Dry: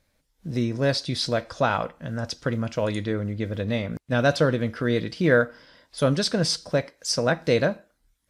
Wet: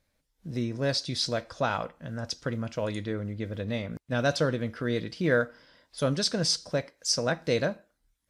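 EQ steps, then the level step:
dynamic equaliser 6,100 Hz, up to +6 dB, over −41 dBFS, Q 1.1
−5.5 dB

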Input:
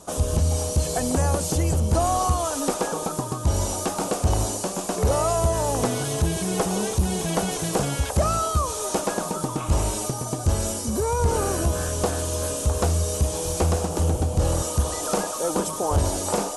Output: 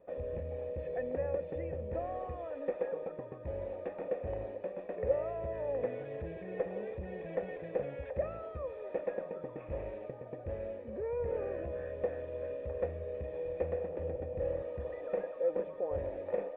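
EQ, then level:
formant resonators in series e
−1.5 dB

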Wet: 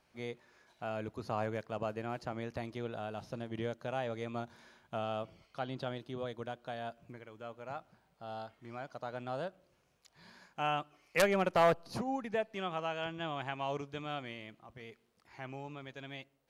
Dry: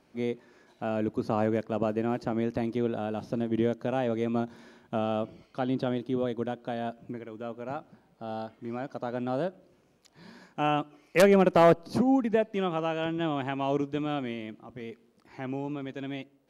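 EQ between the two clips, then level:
parametric band 280 Hz −12.5 dB 1.7 octaves
−3.0 dB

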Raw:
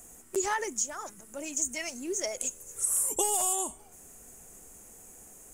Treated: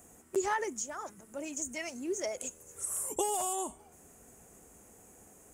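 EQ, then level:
high-pass filter 55 Hz
parametric band 14,000 Hz −8.5 dB 2.7 octaves
0.0 dB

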